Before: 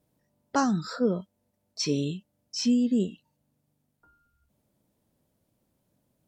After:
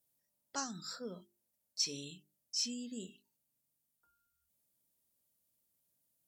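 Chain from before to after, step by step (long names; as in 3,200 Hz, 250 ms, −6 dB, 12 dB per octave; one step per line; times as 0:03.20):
first-order pre-emphasis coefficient 0.9
mains-hum notches 50/100/150/200/250/300/350/400 Hz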